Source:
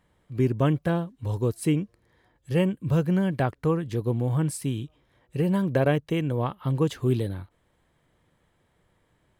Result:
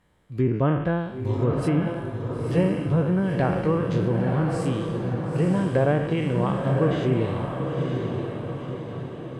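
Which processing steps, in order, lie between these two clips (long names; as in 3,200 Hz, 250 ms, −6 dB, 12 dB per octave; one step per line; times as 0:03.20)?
peak hold with a decay on every bin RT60 0.75 s
treble cut that deepens with the level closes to 1,700 Hz, closed at −18 dBFS
feedback delay with all-pass diffusion 963 ms, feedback 52%, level −4 dB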